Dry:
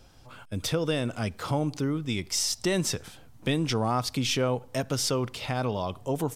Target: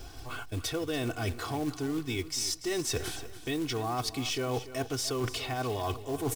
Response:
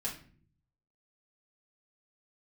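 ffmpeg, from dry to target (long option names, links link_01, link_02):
-af "aecho=1:1:2.7:0.8,areverse,acompressor=threshold=-36dB:ratio=16,areverse,acrusher=bits=4:mode=log:mix=0:aa=0.000001,aecho=1:1:288|576|864:0.2|0.0638|0.0204,volume=7dB"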